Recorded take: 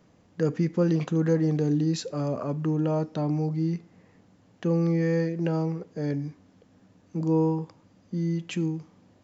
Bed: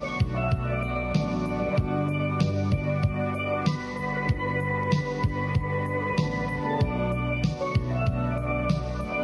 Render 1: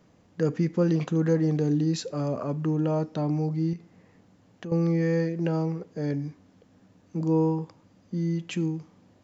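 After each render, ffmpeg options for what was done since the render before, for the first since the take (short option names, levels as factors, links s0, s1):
-filter_complex "[0:a]asettb=1/sr,asplit=3[s0][s1][s2];[s0]atrim=end=3.734[s3];[s1]atrim=start=3.73:end=4.72,asetpts=PTS-STARTPTS,afade=t=in:d=0.004:c=qsin,afade=t=out:st=0.986:d=0.004:c=qsin,acompressor=threshold=0.0158:ratio=3:attack=3.2:release=140:knee=1:detection=peak[s4];[s2]atrim=start=4.716[s5];[s3][s4]acrossfade=d=0.004:c1=hsin:c2=qsin[s6];[s6][s5]acrossfade=d=0.004:c1=qsin:c2=hsin"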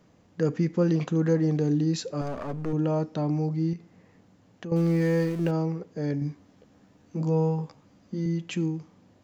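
-filter_complex "[0:a]asettb=1/sr,asplit=3[s0][s1][s2];[s0]atrim=end=2.214[s3];[s1]atrim=start=2.21:end=2.73,asetpts=PTS-STARTPTS,afade=t=in:d=0.004:c=qsin,afade=t=out:st=0.516:d=0.004:c=qsin,aeval=exprs='clip(val(0),-1,0.0133)':c=same[s4];[s2]atrim=start=2.726[s5];[s3][s4]acrossfade=d=0.004:c1=hsin:c2=qsin[s6];[s6][s5]acrossfade=d=0.004:c1=qsin:c2=hsin,asettb=1/sr,asplit=3[s7][s8][s9];[s7]atrim=end=4.764[s10];[s8]atrim=start=4.76:end=5.51,asetpts=PTS-STARTPTS,afade=t=in:d=0.004:c=qsin,afade=t=out:st=0.746:d=0.004:c=qsin,aeval=exprs='val(0)+0.5*0.0141*sgn(val(0))':c=same[s11];[s9]atrim=start=5.506[s12];[s10][s11]acrossfade=d=0.004:c1=hsin:c2=qsin[s13];[s13][s12]acrossfade=d=0.004:c1=qsin:c2=hsin,asettb=1/sr,asplit=3[s14][s15][s16];[s14]atrim=end=6.204[s17];[s15]atrim=start=6.2:end=8.26,asetpts=PTS-STARTPTS,afade=t=in:d=0.004:c=qsin,afade=t=out:st=2.056:d=0.004:c=qsin,asplit=2[s18][s19];[s19]adelay=14,volume=0.708[s20];[s18][s20]amix=inputs=2:normalize=0,atrim=end_sample=90846[s21];[s16]atrim=start=8.256[s22];[s17][s21]acrossfade=d=0.004:c1=hsin:c2=qsin[s23];[s23][s22]acrossfade=d=0.004:c1=qsin:c2=hsin"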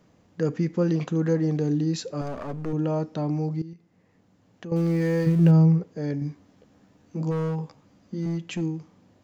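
-filter_complex "[0:a]asettb=1/sr,asplit=3[s0][s1][s2];[s0]atrim=end=5.264[s3];[s1]atrim=start=5.26:end=5.84,asetpts=PTS-STARTPTS,afade=t=in:d=0.004:c=qsin,afade=t=out:st=0.576:d=0.004:c=qsin,equalizer=f=150:w=2.4:g=15[s4];[s2]atrim=start=5.836[s5];[s3][s4]acrossfade=d=0.004:c1=hsin:c2=qsin[s6];[s6][s5]acrossfade=d=0.004:c1=qsin:c2=hsin,asplit=3[s7][s8][s9];[s7]afade=t=out:st=7.3:d=0.02[s10];[s8]asoftclip=type=hard:threshold=0.0708,afade=t=in:st=7.3:d=0.02,afade=t=out:st=8.6:d=0.02[s11];[s9]afade=t=in:st=8.6:d=0.02[s12];[s10][s11][s12]amix=inputs=3:normalize=0,asplit=2[s13][s14];[s13]atrim=end=3.62,asetpts=PTS-STARTPTS,afade=t=out:st=3.616:d=0.004:c=hsin:silence=0.16788[s15];[s14]atrim=start=3.62,asetpts=PTS-STARTPTS,afade=t=in:d=1.14:silence=0.16788[s16];[s15][s16]concat=n=2:v=0:a=1"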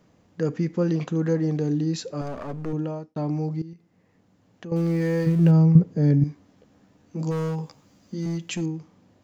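-filter_complex "[0:a]asettb=1/sr,asplit=3[s0][s1][s2];[s0]atrim=end=5.754[s3];[s1]atrim=start=5.75:end=6.24,asetpts=PTS-STARTPTS,afade=t=in:d=0.004:c=qsin,afade=t=out:st=0.486:d=0.004:c=qsin,equalizer=f=150:w=0.58:g=12.5[s4];[s2]atrim=start=6.236[s5];[s3][s4]acrossfade=d=0.004:c1=hsin:c2=qsin[s6];[s6][s5]acrossfade=d=0.004:c1=qsin:c2=hsin,asettb=1/sr,asplit=3[s7][s8][s9];[s7]atrim=end=7.194[s10];[s8]atrim=start=7.19:end=8.66,asetpts=PTS-STARTPTS,afade=t=in:d=0.004:c=qsin,afade=t=out:st=1.466:d=0.004:c=qsin,highshelf=f=4300:g=11.5[s11];[s9]atrim=start=8.656[s12];[s10][s11]acrossfade=d=0.004:c1=hsin:c2=qsin[s13];[s13][s12]acrossfade=d=0.004:c1=qsin:c2=hsin,asplit=2[s14][s15];[s14]atrim=end=3.16,asetpts=PTS-STARTPTS,afade=t=out:st=2.72:d=0.44[s16];[s15]atrim=start=3.16,asetpts=PTS-STARTPTS,afade=t=in:d=0.004:c=hsin[s17];[s16][s17]concat=n=2:v=0:a=1"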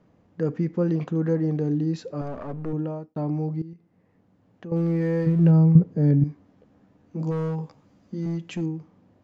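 -af "lowpass=f=1500:p=1"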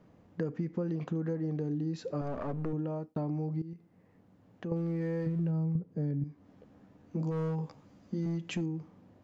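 -af "acompressor=threshold=0.0316:ratio=8"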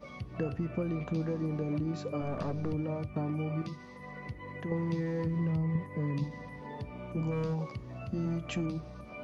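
-filter_complex "[1:a]volume=0.15[s0];[0:a][s0]amix=inputs=2:normalize=0"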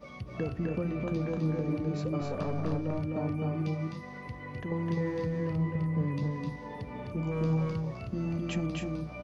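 -af "aecho=1:1:256.6|288.6:0.708|0.355"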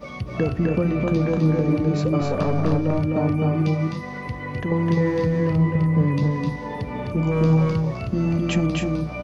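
-af "volume=3.55"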